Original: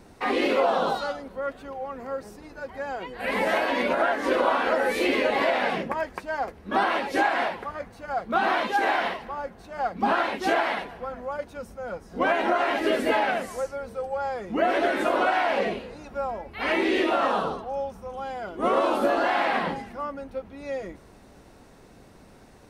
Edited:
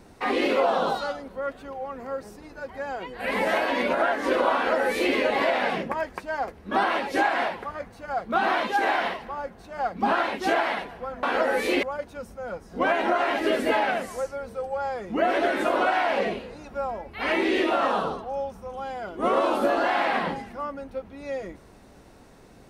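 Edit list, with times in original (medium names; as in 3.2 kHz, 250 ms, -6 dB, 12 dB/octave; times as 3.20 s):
4.55–5.15 s: copy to 11.23 s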